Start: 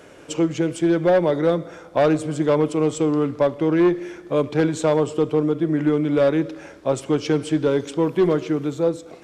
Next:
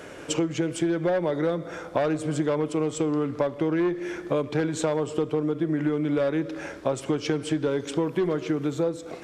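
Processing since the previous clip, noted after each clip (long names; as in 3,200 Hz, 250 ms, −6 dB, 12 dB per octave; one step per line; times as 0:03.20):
parametric band 1,700 Hz +2.5 dB
downward compressor 6 to 1, threshold −26 dBFS, peak gain reduction 12 dB
level +3.5 dB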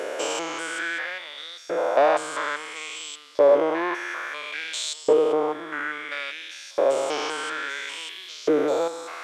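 spectrum averaged block by block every 200 ms
auto-filter high-pass saw up 0.59 Hz 450–4,900 Hz
level +9 dB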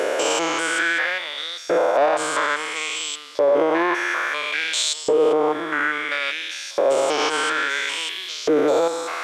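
brickwall limiter −19 dBFS, peak gain reduction 11 dB
level +8.5 dB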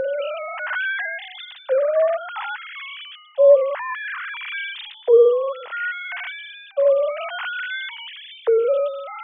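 three sine waves on the formant tracks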